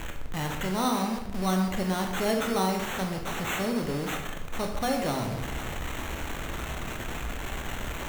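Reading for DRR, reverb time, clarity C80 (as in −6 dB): 2.0 dB, 0.80 s, 8.0 dB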